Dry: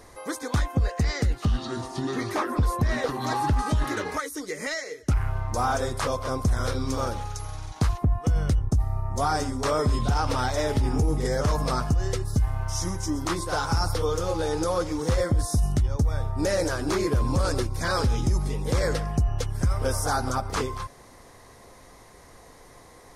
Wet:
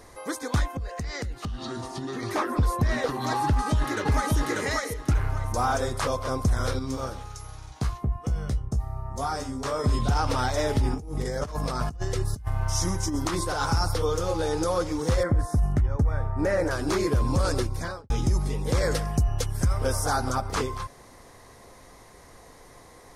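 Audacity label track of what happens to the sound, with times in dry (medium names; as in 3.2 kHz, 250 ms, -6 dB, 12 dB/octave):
0.680000	2.230000	compression, threshold -29 dBFS
3.460000	4.340000	echo throw 590 ms, feedback 25%, level -0.5 dB
6.790000	9.840000	feedback comb 66 Hz, decay 0.16 s, mix 90%
10.940000	13.700000	compressor with a negative ratio -27 dBFS, ratio -0.5
15.230000	16.710000	resonant high shelf 2.6 kHz -10.5 dB, Q 1.5
17.690000	18.100000	studio fade out
18.910000	19.650000	treble shelf 6.8 kHz +9 dB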